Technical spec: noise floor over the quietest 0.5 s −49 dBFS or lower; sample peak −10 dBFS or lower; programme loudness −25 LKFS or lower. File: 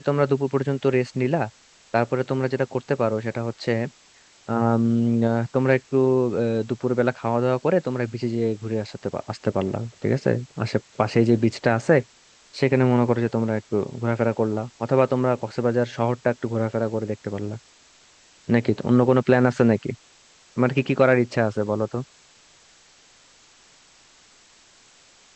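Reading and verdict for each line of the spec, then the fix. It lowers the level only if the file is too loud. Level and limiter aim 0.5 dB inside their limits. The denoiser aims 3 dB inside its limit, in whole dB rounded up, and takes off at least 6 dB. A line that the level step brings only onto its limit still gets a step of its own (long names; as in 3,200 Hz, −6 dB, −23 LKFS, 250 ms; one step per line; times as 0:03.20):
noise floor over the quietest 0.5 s −54 dBFS: in spec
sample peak −4.0 dBFS: out of spec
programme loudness −23.0 LKFS: out of spec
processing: level −2.5 dB
brickwall limiter −10.5 dBFS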